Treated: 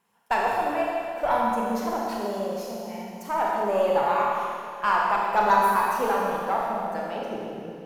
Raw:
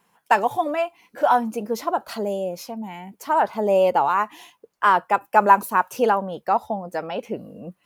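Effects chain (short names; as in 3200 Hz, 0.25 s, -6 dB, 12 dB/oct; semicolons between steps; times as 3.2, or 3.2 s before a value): added harmonics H 6 -25 dB, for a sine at -1.5 dBFS; Schroeder reverb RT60 2.4 s, combs from 27 ms, DRR -3.5 dB; gain -8 dB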